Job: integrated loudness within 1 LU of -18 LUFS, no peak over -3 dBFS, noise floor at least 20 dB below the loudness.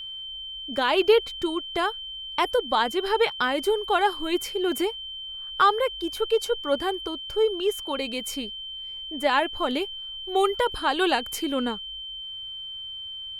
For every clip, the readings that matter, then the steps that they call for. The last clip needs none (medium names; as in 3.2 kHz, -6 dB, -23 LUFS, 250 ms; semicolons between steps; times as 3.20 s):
steady tone 3.1 kHz; tone level -34 dBFS; loudness -26.0 LUFS; peak level -7.5 dBFS; loudness target -18.0 LUFS
-> band-stop 3.1 kHz, Q 30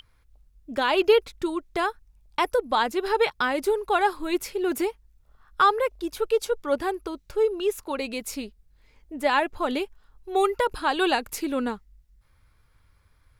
steady tone not found; loudness -25.5 LUFS; peak level -8.0 dBFS; loudness target -18.0 LUFS
-> trim +7.5 dB; peak limiter -3 dBFS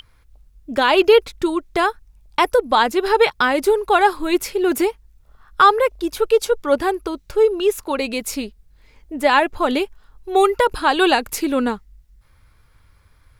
loudness -18.5 LUFS; peak level -3.0 dBFS; noise floor -55 dBFS